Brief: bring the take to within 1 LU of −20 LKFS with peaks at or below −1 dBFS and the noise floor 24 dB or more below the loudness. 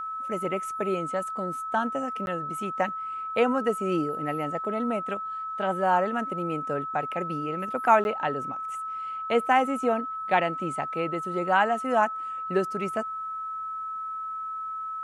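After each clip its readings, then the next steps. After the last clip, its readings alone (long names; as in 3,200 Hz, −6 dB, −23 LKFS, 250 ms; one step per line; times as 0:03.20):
number of dropouts 2; longest dropout 11 ms; interfering tone 1,300 Hz; level of the tone −31 dBFS; integrated loudness −28.0 LKFS; sample peak −6.5 dBFS; target loudness −20.0 LKFS
→ repair the gap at 0:02.26/0:08.04, 11 ms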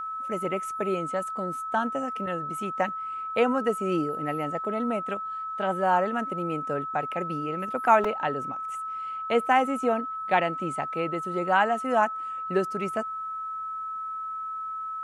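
number of dropouts 0; interfering tone 1,300 Hz; level of the tone −31 dBFS
→ notch filter 1,300 Hz, Q 30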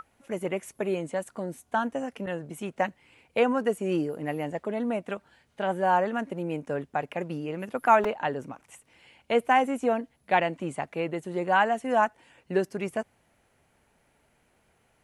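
interfering tone none found; integrated loudness −28.5 LKFS; sample peak −7.0 dBFS; target loudness −20.0 LKFS
→ level +8.5 dB
brickwall limiter −1 dBFS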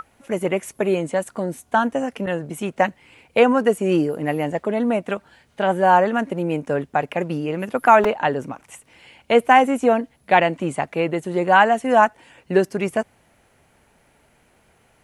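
integrated loudness −20.0 LKFS; sample peak −1.0 dBFS; background noise floor −60 dBFS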